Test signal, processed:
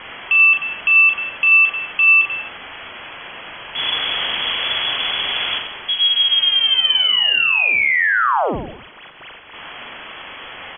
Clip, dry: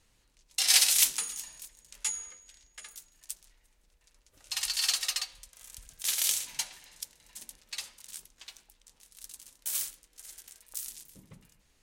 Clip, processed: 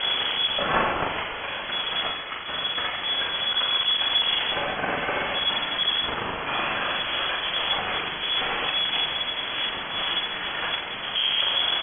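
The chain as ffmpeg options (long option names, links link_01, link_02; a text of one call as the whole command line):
ffmpeg -i in.wav -af "aeval=exprs='val(0)+0.5*0.0596*sgn(val(0))':channel_layout=same,aecho=1:1:40|86|138.9|199.7|269.7:0.631|0.398|0.251|0.158|0.1,lowpass=frequency=2900:width_type=q:width=0.5098,lowpass=frequency=2900:width_type=q:width=0.6013,lowpass=frequency=2900:width_type=q:width=0.9,lowpass=frequency=2900:width_type=q:width=2.563,afreqshift=-3400,volume=6.5dB" out.wav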